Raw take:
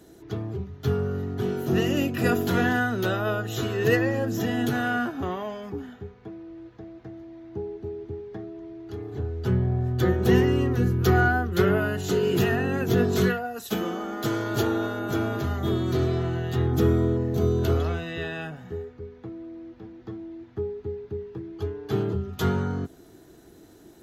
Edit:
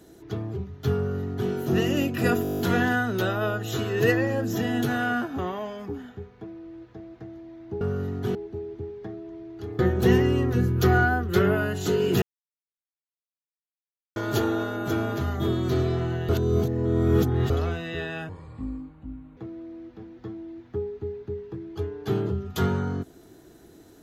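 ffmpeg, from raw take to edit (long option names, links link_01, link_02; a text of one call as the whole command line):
ffmpeg -i in.wav -filter_complex "[0:a]asplit=18[link_01][link_02][link_03][link_04][link_05][link_06][link_07][link_08][link_09][link_10][link_11][link_12][link_13][link_14][link_15][link_16][link_17][link_18];[link_01]atrim=end=2.452[link_19];[link_02]atrim=start=2.428:end=2.452[link_20];[link_03]atrim=start=2.428:end=2.452[link_21];[link_04]atrim=start=2.428:end=2.452[link_22];[link_05]atrim=start=2.428:end=2.452[link_23];[link_06]atrim=start=2.428:end=2.452[link_24];[link_07]atrim=start=2.428:end=2.452[link_25];[link_08]atrim=start=2.428:end=2.452[link_26];[link_09]atrim=start=2.428:end=7.652[link_27];[link_10]atrim=start=0.958:end=1.502[link_28];[link_11]atrim=start=7.648:end=9.092[link_29];[link_12]atrim=start=10.018:end=12.45,asetpts=PTS-STARTPTS,afade=type=out:start_time=2.428:duration=0.004:curve=hsin[link_30];[link_13]atrim=start=12.45:end=14.39,asetpts=PTS-STARTPTS,volume=0[link_31];[link_14]atrim=start=14.39:end=16.522,asetpts=PTS-STARTPTS,afade=type=in:duration=0.004:curve=hsin[link_32];[link_15]atrim=start=16.518:end=17.732,asetpts=PTS-STARTPTS,areverse[link_33];[link_16]atrim=start=17.728:end=18.524[link_34];[link_17]atrim=start=18.52:end=19.2,asetpts=PTS-STARTPTS,asetrate=27783,aresample=44100[link_35];[link_18]atrim=start=19.196[link_36];[link_19][link_20]acrossfade=duration=0.004:curve1=hsin:curve2=hsin[link_37];[link_37][link_21]acrossfade=duration=0.004:curve1=hsin:curve2=hsin[link_38];[link_38][link_22]acrossfade=duration=0.004:curve1=hsin:curve2=hsin[link_39];[link_39][link_23]acrossfade=duration=0.004:curve1=hsin:curve2=hsin[link_40];[link_40][link_24]acrossfade=duration=0.004:curve1=hsin:curve2=hsin[link_41];[link_41][link_25]acrossfade=duration=0.004:curve1=hsin:curve2=hsin[link_42];[link_42][link_26]acrossfade=duration=0.004:curve1=hsin:curve2=hsin[link_43];[link_43][link_27]acrossfade=duration=0.004:curve1=hsin:curve2=hsin[link_44];[link_44][link_28]acrossfade=duration=0.004:curve1=hsin:curve2=hsin[link_45];[link_45][link_29]acrossfade=duration=0.004:curve1=hsin:curve2=hsin[link_46];[link_30][link_31][link_32]concat=n=3:v=0:a=1[link_47];[link_46][link_47]acrossfade=duration=0.004:curve1=hsin:curve2=hsin[link_48];[link_48][link_33]acrossfade=duration=0.004:curve1=hsin:curve2=hsin[link_49];[link_49][link_34]acrossfade=duration=0.004:curve1=hsin:curve2=hsin[link_50];[link_50][link_35]acrossfade=duration=0.004:curve1=hsin:curve2=hsin[link_51];[link_51][link_36]acrossfade=duration=0.004:curve1=hsin:curve2=hsin" out.wav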